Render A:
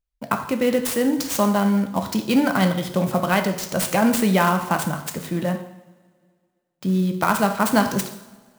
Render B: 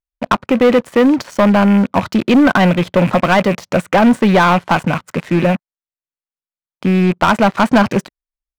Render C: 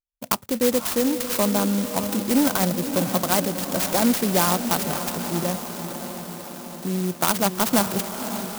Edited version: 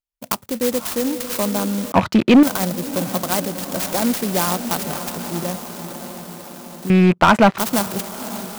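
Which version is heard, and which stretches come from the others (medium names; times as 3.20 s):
C
1.92–2.43 s: from B
6.90–7.58 s: from B
not used: A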